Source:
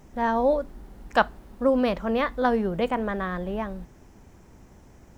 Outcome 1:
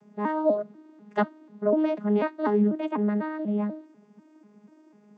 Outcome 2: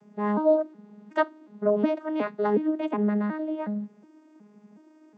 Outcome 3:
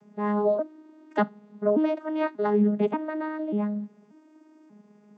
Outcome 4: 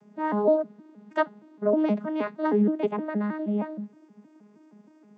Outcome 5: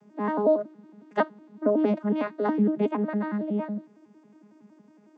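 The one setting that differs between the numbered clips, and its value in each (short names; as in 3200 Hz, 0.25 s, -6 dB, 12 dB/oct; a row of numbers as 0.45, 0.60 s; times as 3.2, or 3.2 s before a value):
arpeggiated vocoder, a note every: 246, 366, 586, 157, 92 ms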